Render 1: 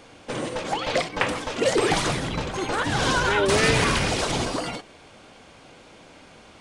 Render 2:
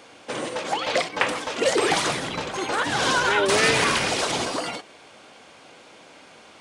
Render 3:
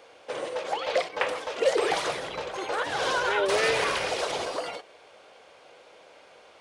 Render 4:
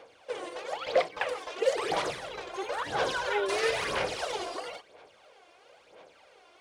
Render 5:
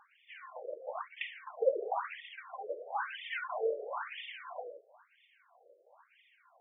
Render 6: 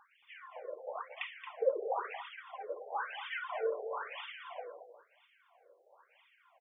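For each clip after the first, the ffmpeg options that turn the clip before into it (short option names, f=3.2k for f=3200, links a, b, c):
-af "highpass=f=370:p=1,volume=2dB"
-af "equalizer=f=125:t=o:w=1:g=-5,equalizer=f=250:t=o:w=1:g=-10,equalizer=f=500:t=o:w=1:g=8,equalizer=f=8k:t=o:w=1:g=-5,volume=-6dB"
-af "aphaser=in_gain=1:out_gain=1:delay=2.9:decay=0.62:speed=1:type=sinusoidal,volume=-6.5dB"
-af "afftfilt=real='re*between(b*sr/1024,450*pow(2600/450,0.5+0.5*sin(2*PI*1*pts/sr))/1.41,450*pow(2600/450,0.5+0.5*sin(2*PI*1*pts/sr))*1.41)':imag='im*between(b*sr/1024,450*pow(2600/450,0.5+0.5*sin(2*PI*1*pts/sr))/1.41,450*pow(2600/450,0.5+0.5*sin(2*PI*1*pts/sr))*1.41)':win_size=1024:overlap=0.75,volume=-2dB"
-af "aecho=1:1:225:0.316,volume=-1.5dB"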